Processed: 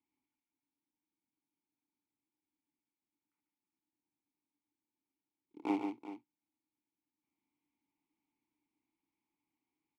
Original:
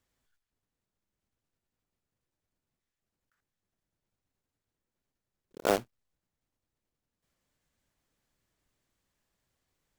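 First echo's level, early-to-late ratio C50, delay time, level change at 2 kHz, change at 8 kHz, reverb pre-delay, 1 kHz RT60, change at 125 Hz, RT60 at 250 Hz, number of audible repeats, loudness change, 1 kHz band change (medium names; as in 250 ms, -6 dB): -18.0 dB, no reverb, 105 ms, -12.0 dB, under -25 dB, no reverb, no reverb, under -10 dB, no reverb, 3, -7.5 dB, -7.0 dB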